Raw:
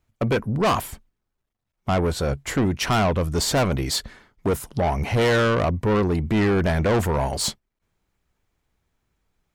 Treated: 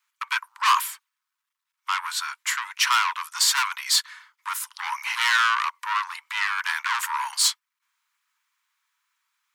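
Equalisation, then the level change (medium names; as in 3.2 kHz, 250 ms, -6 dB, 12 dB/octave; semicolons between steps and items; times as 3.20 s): steep high-pass 940 Hz 96 dB/octave; +5.0 dB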